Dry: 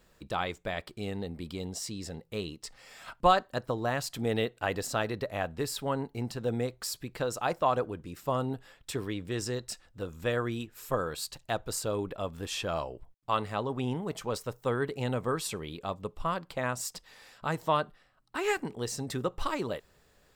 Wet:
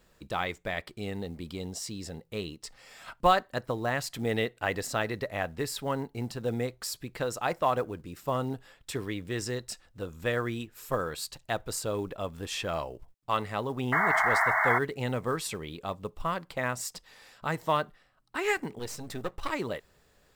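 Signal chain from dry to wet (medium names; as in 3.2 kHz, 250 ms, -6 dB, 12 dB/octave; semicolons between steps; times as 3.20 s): 18.79–19.50 s: partial rectifier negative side -12 dB; dynamic bell 2 kHz, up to +6 dB, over -52 dBFS, Q 3.4; 13.92–14.79 s: painted sound noise 620–2200 Hz -25 dBFS; short-mantissa float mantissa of 4-bit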